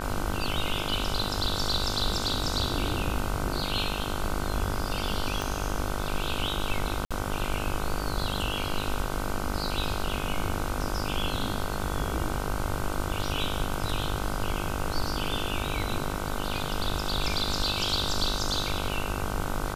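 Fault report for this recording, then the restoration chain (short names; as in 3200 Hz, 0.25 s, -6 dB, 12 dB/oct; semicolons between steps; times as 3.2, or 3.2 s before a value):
buzz 50 Hz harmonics 31 -34 dBFS
5.42 pop
7.05–7.11 gap 56 ms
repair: de-click; de-hum 50 Hz, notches 31; interpolate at 7.05, 56 ms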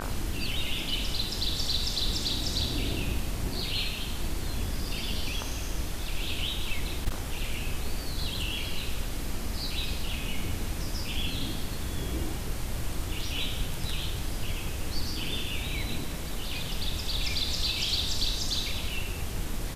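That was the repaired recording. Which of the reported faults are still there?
5.42 pop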